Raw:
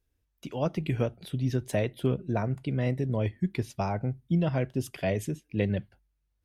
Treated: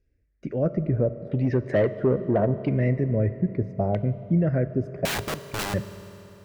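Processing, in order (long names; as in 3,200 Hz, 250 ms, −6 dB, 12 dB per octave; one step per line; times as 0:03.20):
drawn EQ curve 600 Hz 0 dB, 900 Hz −22 dB, 1,900 Hz −5 dB, 3,300 Hz −20 dB, 5,000 Hz 0 dB
in parallel at +2 dB: brickwall limiter −24.5 dBFS, peak gain reduction 10 dB
on the sum: auto-filter low-pass saw down 0.76 Hz 760–2,900 Hz
0:01.29–0:02.69: mid-hump overdrive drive 18 dB, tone 1,000 Hz, clips at −11 dBFS
0:05.05–0:05.74: wrap-around overflow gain 23.5 dB
on a send at −12.5 dB: convolution reverb RT60 3.6 s, pre-delay 3 ms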